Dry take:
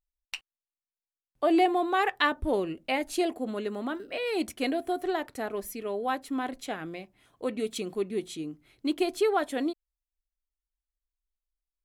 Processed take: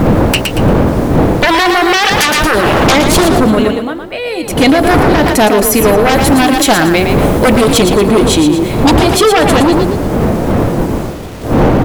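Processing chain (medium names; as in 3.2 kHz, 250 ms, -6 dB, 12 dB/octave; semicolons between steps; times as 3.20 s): wind noise 390 Hz -37 dBFS; compression 5:1, threshold -27 dBFS, peak gain reduction 9 dB; band-stop 390 Hz, Q 12; bit crusher 11-bit; 3.42–4.78 s: dip -21 dB, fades 0.32 s; 6.13–7.61 s: treble shelf 6.9 kHz +7.5 dB; sine folder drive 13 dB, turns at -16.5 dBFS; 1.45–2.87 s: tilt shelf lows -6 dB, about 730 Hz; frequency-shifting echo 115 ms, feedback 32%, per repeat +31 Hz, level -7 dB; loudness maximiser +18 dB; trim -1 dB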